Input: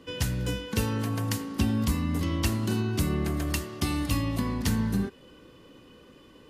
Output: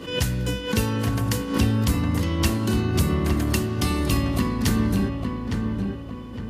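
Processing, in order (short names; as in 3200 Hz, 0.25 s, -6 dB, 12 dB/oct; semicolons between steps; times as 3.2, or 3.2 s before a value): on a send: darkening echo 0.86 s, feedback 45%, low-pass 1900 Hz, level -4 dB; on the sum: backwards sustainer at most 97 dB/s; gain +4 dB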